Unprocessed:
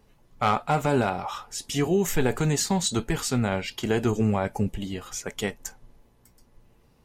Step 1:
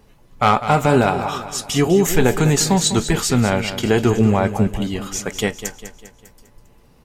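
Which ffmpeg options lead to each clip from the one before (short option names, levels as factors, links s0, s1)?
-af "aecho=1:1:200|400|600|800|1000:0.266|0.125|0.0588|0.0276|0.013,volume=2.51"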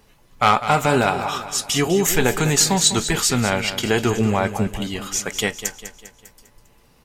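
-af "tiltshelf=f=890:g=-4,volume=0.891"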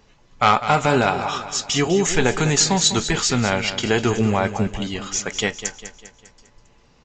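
-af "aresample=16000,aresample=44100"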